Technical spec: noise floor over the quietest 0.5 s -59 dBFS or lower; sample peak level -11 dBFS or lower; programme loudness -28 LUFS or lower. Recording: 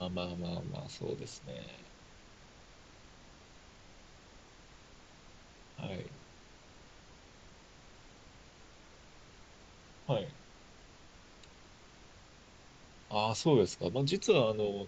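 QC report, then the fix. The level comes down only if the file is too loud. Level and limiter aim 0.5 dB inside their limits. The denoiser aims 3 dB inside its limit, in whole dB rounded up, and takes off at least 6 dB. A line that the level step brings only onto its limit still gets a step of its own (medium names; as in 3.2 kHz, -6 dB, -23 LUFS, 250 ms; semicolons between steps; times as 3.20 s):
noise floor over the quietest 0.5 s -57 dBFS: fail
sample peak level -14.5 dBFS: pass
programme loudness -34.5 LUFS: pass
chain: noise reduction 6 dB, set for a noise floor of -57 dBFS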